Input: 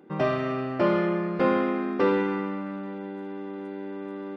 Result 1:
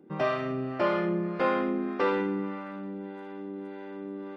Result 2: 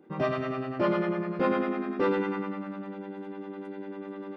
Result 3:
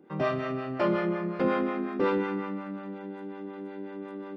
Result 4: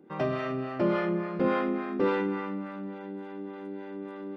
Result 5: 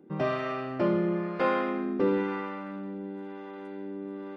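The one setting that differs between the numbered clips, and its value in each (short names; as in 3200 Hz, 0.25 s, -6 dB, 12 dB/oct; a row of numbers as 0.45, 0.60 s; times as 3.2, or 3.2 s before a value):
harmonic tremolo, rate: 1.7, 10, 5.5, 3.5, 1 Hz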